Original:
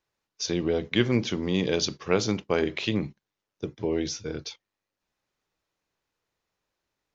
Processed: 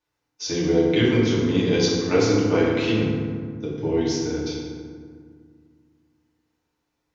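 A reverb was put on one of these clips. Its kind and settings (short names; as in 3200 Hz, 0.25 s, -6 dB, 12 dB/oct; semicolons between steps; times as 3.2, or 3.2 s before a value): FDN reverb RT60 1.9 s, low-frequency decay 1.45×, high-frequency decay 0.5×, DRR -8 dB; gain -4 dB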